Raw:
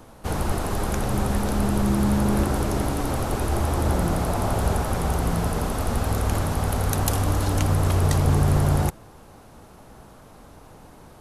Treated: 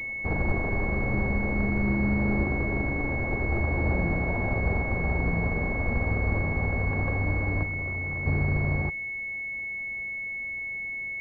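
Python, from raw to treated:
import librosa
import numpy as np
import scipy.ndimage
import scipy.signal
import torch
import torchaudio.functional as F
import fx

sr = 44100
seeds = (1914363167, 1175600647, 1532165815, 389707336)

y = np.r_[np.sort(x[:len(x) // 16 * 16].reshape(-1, 16), axis=1).ravel(), x[len(x) // 16 * 16:]]
y = fx.rider(y, sr, range_db=3, speed_s=2.0)
y = fx.overload_stage(y, sr, gain_db=28.5, at=(7.63, 8.26))
y = fx.pwm(y, sr, carrier_hz=2200.0)
y = y * librosa.db_to_amplitude(-4.0)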